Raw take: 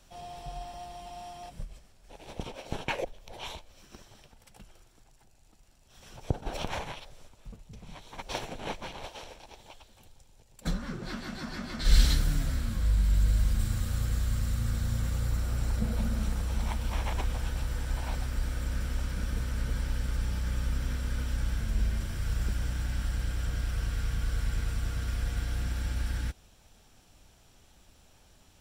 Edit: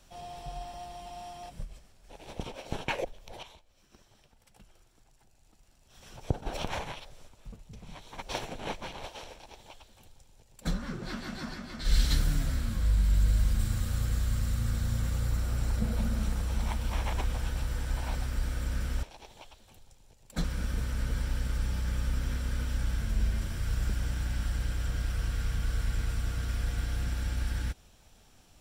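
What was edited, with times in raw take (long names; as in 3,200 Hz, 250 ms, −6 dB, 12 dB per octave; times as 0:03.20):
0:03.43–0:06.10: fade in, from −14 dB
0:09.32–0:10.73: duplicate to 0:19.03
0:11.54–0:12.11: clip gain −4 dB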